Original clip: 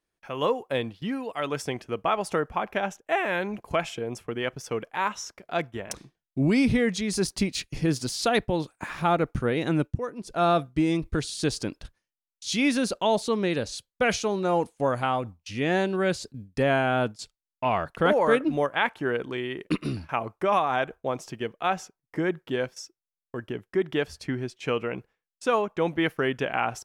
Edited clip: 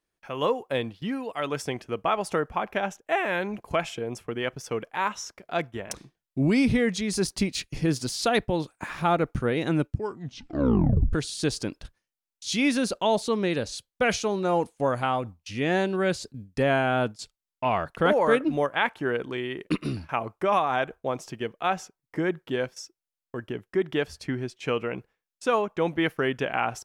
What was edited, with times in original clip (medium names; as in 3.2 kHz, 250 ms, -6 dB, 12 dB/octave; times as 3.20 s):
9.87 s: tape stop 1.26 s